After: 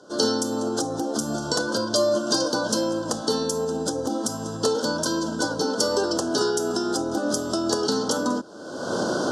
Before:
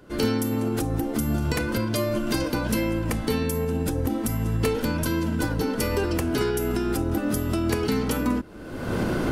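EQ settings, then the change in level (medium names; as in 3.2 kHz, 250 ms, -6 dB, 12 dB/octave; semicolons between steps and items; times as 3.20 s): Butterworth band-stop 2.3 kHz, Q 0.52; cabinet simulation 150–6100 Hz, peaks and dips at 580 Hz +4 dB, 1.5 kHz +8 dB, 3.1 kHz +8 dB; tilt EQ +4 dB/octave; +6.5 dB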